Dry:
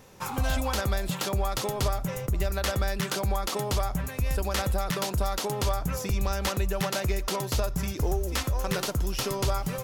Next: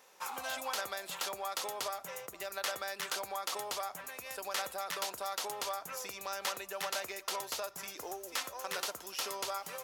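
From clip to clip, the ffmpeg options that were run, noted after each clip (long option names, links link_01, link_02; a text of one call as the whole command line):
ffmpeg -i in.wav -af "highpass=650,volume=-5dB" out.wav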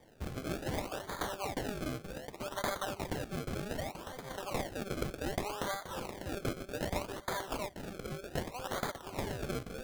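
ffmpeg -i in.wav -af "acrusher=samples=32:mix=1:aa=0.000001:lfo=1:lforange=32:lforate=0.65,volume=1dB" out.wav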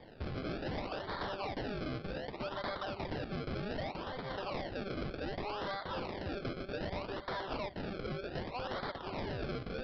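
ffmpeg -i in.wav -af "acompressor=threshold=-38dB:ratio=2.5,aresample=11025,asoftclip=type=tanh:threshold=-40dB,aresample=44100,volume=6.5dB" out.wav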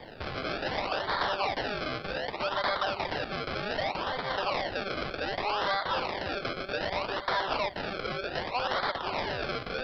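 ffmpeg -i in.wav -filter_complex "[0:a]acrossover=split=570[link_01][link_02];[link_01]alimiter=level_in=17dB:limit=-24dB:level=0:latency=1:release=190,volume=-17dB[link_03];[link_02]acontrast=56[link_04];[link_03][link_04]amix=inputs=2:normalize=0,volume=5.5dB" out.wav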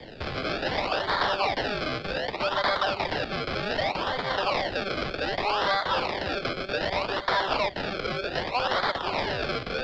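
ffmpeg -i in.wav -filter_complex "[0:a]acrossover=split=200|740|1500[link_01][link_02][link_03][link_04];[link_03]aeval=exprs='sgn(val(0))*max(abs(val(0))-0.00282,0)':channel_layout=same[link_05];[link_01][link_02][link_05][link_04]amix=inputs=4:normalize=0,volume=4.5dB" -ar 16000 -c:a pcm_mulaw out.wav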